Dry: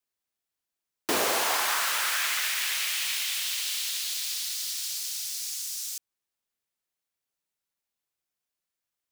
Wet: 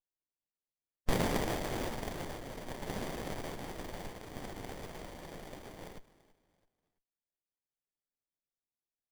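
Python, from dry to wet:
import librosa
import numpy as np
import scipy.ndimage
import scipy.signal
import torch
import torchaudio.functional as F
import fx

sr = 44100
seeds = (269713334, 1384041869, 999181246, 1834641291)

p1 = x + fx.echo_feedback(x, sr, ms=333, feedback_pct=35, wet_db=-19.5, dry=0)
p2 = fx.filter_lfo_notch(p1, sr, shape='saw_up', hz=0.69, low_hz=580.0, high_hz=3600.0, q=1.4)
p3 = fx.spec_gate(p2, sr, threshold_db=-15, keep='weak')
p4 = fx.running_max(p3, sr, window=33)
y = p4 * 10.0 ** (6.5 / 20.0)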